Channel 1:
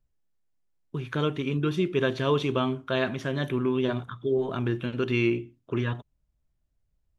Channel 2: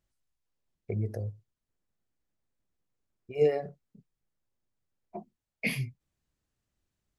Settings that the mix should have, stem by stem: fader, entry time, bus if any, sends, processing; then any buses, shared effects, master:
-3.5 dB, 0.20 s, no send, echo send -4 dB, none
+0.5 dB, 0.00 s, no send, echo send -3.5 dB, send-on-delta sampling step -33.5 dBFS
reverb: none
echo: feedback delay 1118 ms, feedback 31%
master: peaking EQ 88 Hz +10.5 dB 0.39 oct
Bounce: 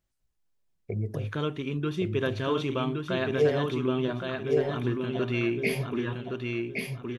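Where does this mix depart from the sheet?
stem 2: missing send-on-delta sampling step -33.5 dBFS; master: missing peaking EQ 88 Hz +10.5 dB 0.39 oct

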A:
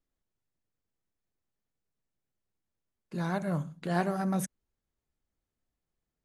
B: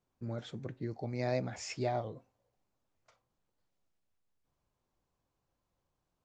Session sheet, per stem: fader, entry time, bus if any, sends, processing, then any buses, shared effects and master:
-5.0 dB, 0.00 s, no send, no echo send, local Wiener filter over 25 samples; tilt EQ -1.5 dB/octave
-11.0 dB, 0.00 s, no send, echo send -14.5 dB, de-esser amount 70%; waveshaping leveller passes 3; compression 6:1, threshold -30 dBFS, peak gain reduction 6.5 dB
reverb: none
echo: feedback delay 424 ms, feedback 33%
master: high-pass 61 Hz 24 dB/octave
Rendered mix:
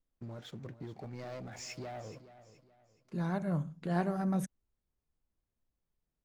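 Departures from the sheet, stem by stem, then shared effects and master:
stem A: missing local Wiener filter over 25 samples; master: missing high-pass 61 Hz 24 dB/octave

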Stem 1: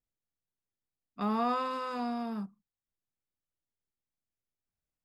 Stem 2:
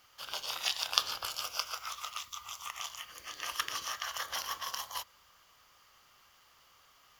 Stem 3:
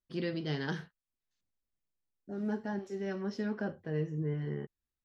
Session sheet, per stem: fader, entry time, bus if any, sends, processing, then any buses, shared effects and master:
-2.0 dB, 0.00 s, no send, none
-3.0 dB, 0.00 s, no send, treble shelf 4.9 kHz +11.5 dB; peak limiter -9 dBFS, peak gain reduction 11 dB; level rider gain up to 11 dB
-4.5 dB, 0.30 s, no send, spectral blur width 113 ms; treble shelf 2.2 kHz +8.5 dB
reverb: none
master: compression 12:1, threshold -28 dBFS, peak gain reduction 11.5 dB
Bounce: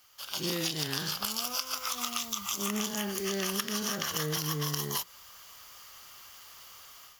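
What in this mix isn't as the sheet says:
stem 1 -2.0 dB -> -9.0 dB; stem 3 -4.5 dB -> +6.5 dB

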